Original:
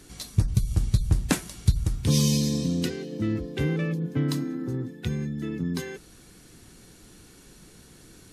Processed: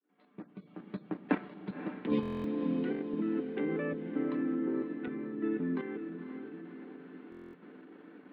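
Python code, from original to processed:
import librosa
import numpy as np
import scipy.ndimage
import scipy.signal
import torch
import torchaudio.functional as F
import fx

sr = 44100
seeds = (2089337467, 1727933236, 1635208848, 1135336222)

p1 = fx.fade_in_head(x, sr, length_s=0.96)
p2 = scipy.signal.sosfilt(scipy.signal.cheby1(5, 1.0, 200.0, 'highpass', fs=sr, output='sos'), p1)
p3 = fx.low_shelf(p2, sr, hz=400.0, db=-2.5)
p4 = p3 + 0.37 * np.pad(p3, (int(6.8 * sr / 1000.0), 0))[:len(p3)]
p5 = fx.level_steps(p4, sr, step_db=9)
p6 = scipy.ndimage.gaussian_filter1d(p5, 4.4, mode='constant')
p7 = p6 + fx.echo_diffused(p6, sr, ms=541, feedback_pct=56, wet_db=-9.0, dry=0)
p8 = fx.buffer_glitch(p7, sr, at_s=(2.21, 7.3), block=1024, repeats=9)
y = p8 * librosa.db_to_amplitude(4.0)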